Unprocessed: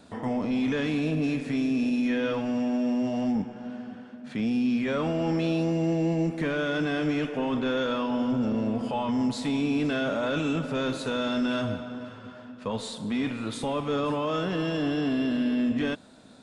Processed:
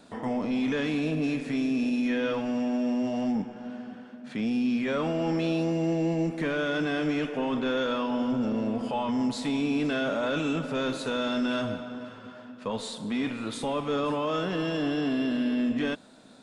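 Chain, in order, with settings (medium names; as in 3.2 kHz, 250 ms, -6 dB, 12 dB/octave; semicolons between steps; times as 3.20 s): peaking EQ 73 Hz -8.5 dB 1.6 oct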